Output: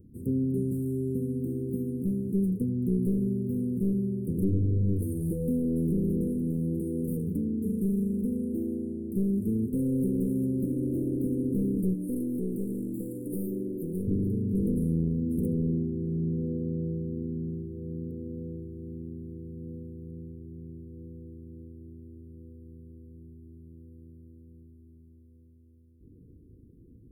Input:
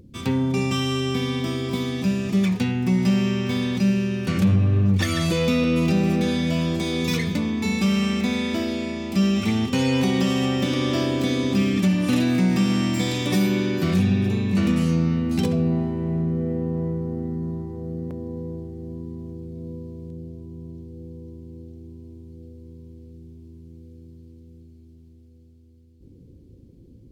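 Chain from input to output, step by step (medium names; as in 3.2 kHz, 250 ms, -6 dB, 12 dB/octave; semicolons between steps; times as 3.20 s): one-sided wavefolder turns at -18.5 dBFS; Chebyshev band-stop 470–9400 Hz, order 5; 11.94–14.08 s: peaking EQ 76 Hz -13.5 dB 2.5 oct; trim -4.5 dB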